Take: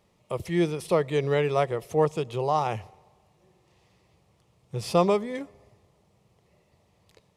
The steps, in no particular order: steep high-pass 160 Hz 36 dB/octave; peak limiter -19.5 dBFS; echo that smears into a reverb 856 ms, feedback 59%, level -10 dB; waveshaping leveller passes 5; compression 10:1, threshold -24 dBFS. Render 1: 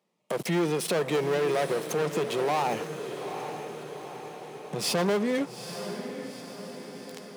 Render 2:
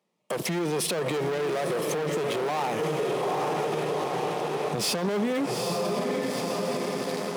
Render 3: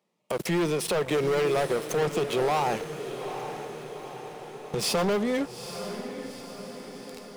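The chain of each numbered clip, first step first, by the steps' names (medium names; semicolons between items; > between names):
waveshaping leveller > compression > echo that smears into a reverb > peak limiter > steep high-pass; compression > echo that smears into a reverb > waveshaping leveller > steep high-pass > peak limiter; steep high-pass > waveshaping leveller > compression > peak limiter > echo that smears into a reverb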